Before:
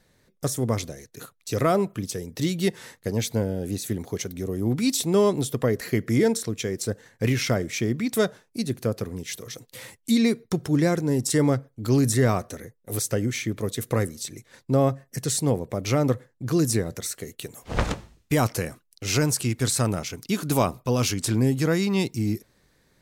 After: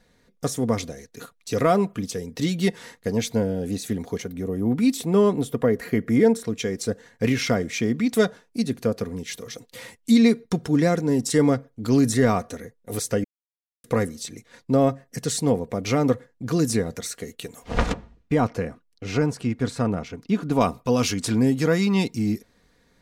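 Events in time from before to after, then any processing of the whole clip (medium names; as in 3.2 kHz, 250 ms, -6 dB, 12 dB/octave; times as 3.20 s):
4.20–6.47 s: peaking EQ 5.3 kHz -8.5 dB 1.7 oct
13.24–13.84 s: mute
17.93–20.61 s: low-pass 1.3 kHz 6 dB/octave
whole clip: treble shelf 9.2 kHz -10 dB; comb 4.2 ms, depth 42%; trim +1.5 dB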